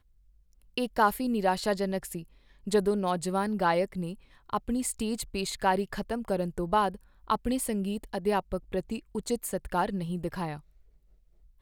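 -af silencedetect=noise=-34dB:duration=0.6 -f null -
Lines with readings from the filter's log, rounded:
silence_start: 0.00
silence_end: 0.78 | silence_duration: 0.78
silence_start: 10.57
silence_end: 11.61 | silence_duration: 1.04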